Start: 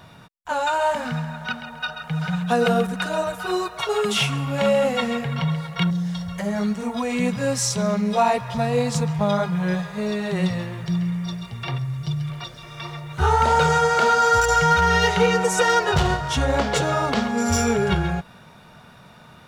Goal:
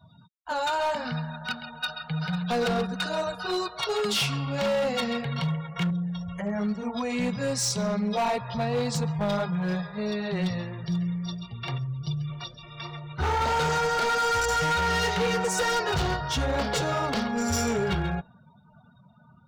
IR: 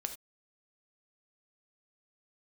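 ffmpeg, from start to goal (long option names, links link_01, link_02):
-af "asetnsamples=nb_out_samples=441:pad=0,asendcmd='5.47 equalizer g -5;6.69 equalizer g 5',equalizer=frequency=4600:width_type=o:width=0.64:gain=10,afftdn=noise_reduction=35:noise_floor=-41,asoftclip=type=hard:threshold=-17.5dB,volume=-4.5dB"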